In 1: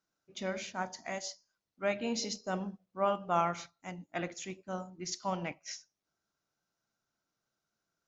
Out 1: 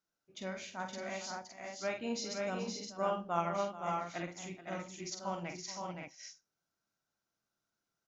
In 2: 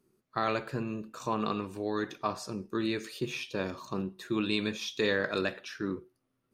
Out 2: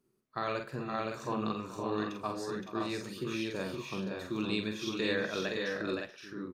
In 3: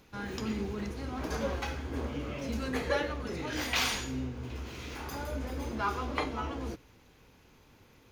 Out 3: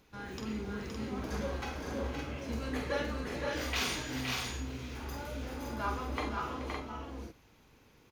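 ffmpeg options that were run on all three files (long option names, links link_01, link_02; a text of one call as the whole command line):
ffmpeg -i in.wav -af "aecho=1:1:47|429|518|563:0.473|0.188|0.562|0.562,volume=-5dB" out.wav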